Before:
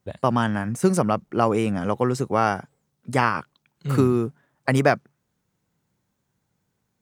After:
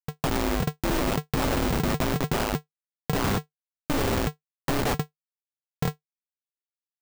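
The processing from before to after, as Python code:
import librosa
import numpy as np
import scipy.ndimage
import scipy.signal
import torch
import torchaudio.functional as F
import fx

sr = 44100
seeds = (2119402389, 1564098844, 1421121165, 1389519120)

y = fx.echo_diffused(x, sr, ms=926, feedback_pct=58, wet_db=-11.0)
y = fx.schmitt(y, sr, flips_db=-20.5)
y = y * np.sign(np.sin(2.0 * np.pi * 150.0 * np.arange(len(y)) / sr))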